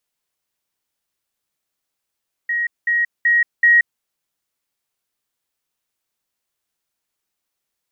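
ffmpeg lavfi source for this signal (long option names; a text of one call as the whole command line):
ffmpeg -f lavfi -i "aevalsrc='pow(10,(-17.5+3*floor(t/0.38))/20)*sin(2*PI*1890*t)*clip(min(mod(t,0.38),0.18-mod(t,0.38))/0.005,0,1)':duration=1.52:sample_rate=44100" out.wav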